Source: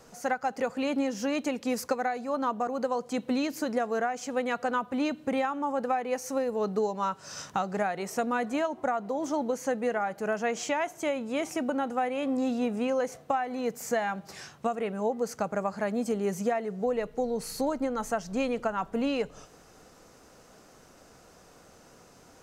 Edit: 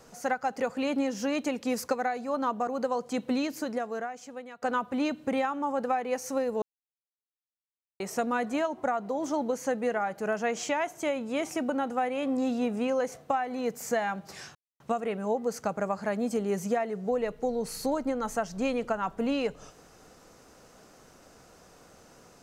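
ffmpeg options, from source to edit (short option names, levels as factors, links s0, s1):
-filter_complex "[0:a]asplit=5[s0][s1][s2][s3][s4];[s0]atrim=end=4.62,asetpts=PTS-STARTPTS,afade=t=out:st=3.32:d=1.3:silence=0.0944061[s5];[s1]atrim=start=4.62:end=6.62,asetpts=PTS-STARTPTS,afade=t=in:d=0.004:c=hsin:silence=0.0944061,afade=t=out:st=1.996:d=0.004:c=hsin[s6];[s2]atrim=start=6.62:end=8,asetpts=PTS-STARTPTS,volume=0[s7];[s3]atrim=start=8:end=14.55,asetpts=PTS-STARTPTS,afade=t=in:d=0.004:c=hsin,afade=t=out:st=6.546:d=0.004:c=hsin,apad=pad_dur=0.25[s8];[s4]atrim=start=14.55,asetpts=PTS-STARTPTS,afade=t=in:d=0.004:c=hsin[s9];[s5][s6][s7][s8][s9]concat=n=5:v=0:a=1"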